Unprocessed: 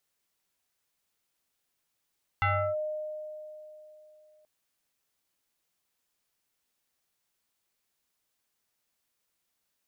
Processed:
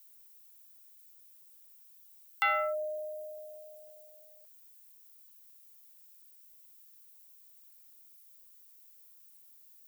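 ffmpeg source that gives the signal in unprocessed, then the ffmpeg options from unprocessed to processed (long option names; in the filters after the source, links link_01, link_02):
-f lavfi -i "aevalsrc='0.0794*pow(10,-3*t/3.23)*sin(2*PI*613*t+2.5*clip(1-t/0.33,0,1)*sin(2*PI*1.16*613*t))':duration=2.03:sample_rate=44100"
-af "highpass=410,aemphasis=mode=production:type=riaa"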